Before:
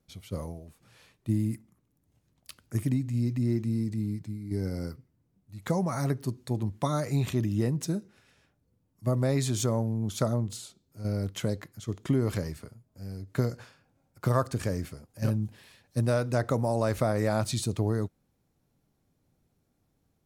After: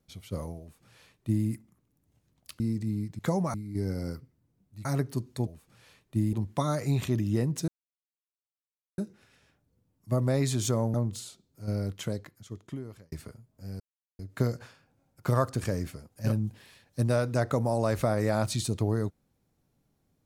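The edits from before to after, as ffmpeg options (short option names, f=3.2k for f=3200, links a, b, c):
-filter_complex "[0:a]asplit=11[a][b][c][d][e][f][g][h][i][j][k];[a]atrim=end=2.602[l];[b]atrim=start=3.708:end=4.302[m];[c]atrim=start=5.608:end=5.962[n];[d]atrim=start=4.298:end=5.612[o];[e]atrim=start=5.958:end=6.582[p];[f]atrim=start=0.598:end=1.462[q];[g]atrim=start=6.578:end=7.93,asetpts=PTS-STARTPTS,afade=t=out:st=1.348:d=0.004:c=hsin,apad=pad_dur=1.3[r];[h]atrim=start=7.93:end=9.892,asetpts=PTS-STARTPTS,afade=t=in:d=0.004:c=hsin[s];[i]atrim=start=10.308:end=12.49,asetpts=PTS-STARTPTS,afade=t=out:st=0.732:d=1.45[t];[j]atrim=start=12.49:end=13.17,asetpts=PTS-STARTPTS,afade=t=in:d=0.004:c=hsin,afade=t=out:st=0.676:d=0.004:c=hsin,apad=pad_dur=0.39[u];[k]atrim=start=13.17,asetpts=PTS-STARTPTS,afade=t=in:d=0.004:c=hsin[v];[l][m]acrossfade=d=0.004:c1=hsin:c2=hsin[w];[w][n]acrossfade=d=0.004:c1=hsin:c2=hsin[x];[x][o]acrossfade=d=0.004:c1=hsin:c2=hsin[y];[y][p]acrossfade=d=0.004:c1=hsin:c2=hsin[z];[z][q]acrossfade=d=0.004:c1=hsin:c2=hsin[aa];[r][s]concat=n=2:v=0:a=1[ab];[aa][ab]acrossfade=d=0.004:c1=hsin:c2=hsin[ac];[t][u][v]concat=n=3:v=0:a=1[ad];[ac][ad]acrossfade=d=0.004:c1=hsin:c2=hsin"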